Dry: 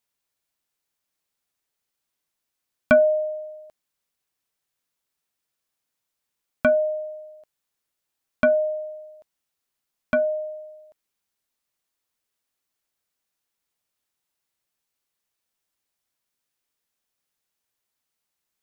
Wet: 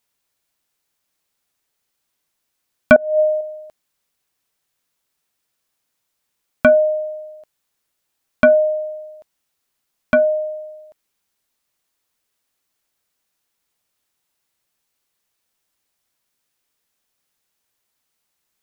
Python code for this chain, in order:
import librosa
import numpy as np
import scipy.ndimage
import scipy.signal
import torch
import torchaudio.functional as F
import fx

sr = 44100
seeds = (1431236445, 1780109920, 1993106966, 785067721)

y = fx.over_compress(x, sr, threshold_db=-24.0, ratio=-0.5, at=(2.96, 3.41))
y = y * 10.0 ** (7.0 / 20.0)